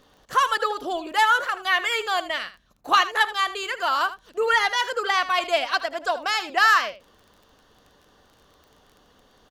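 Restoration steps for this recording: de-click; inverse comb 79 ms -14.5 dB

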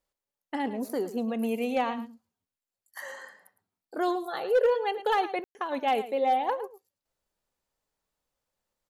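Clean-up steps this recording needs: clip repair -17.5 dBFS; room tone fill 5.44–5.55 s; inverse comb 109 ms -14 dB

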